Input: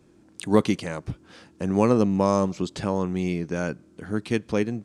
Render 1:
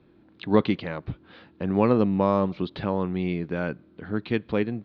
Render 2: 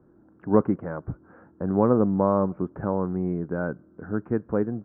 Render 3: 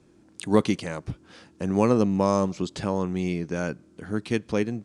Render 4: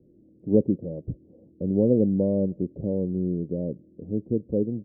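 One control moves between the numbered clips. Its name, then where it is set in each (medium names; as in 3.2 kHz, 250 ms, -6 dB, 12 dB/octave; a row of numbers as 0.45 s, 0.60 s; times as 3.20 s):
elliptic low-pass, frequency: 4 kHz, 1.5 kHz, 11 kHz, 550 Hz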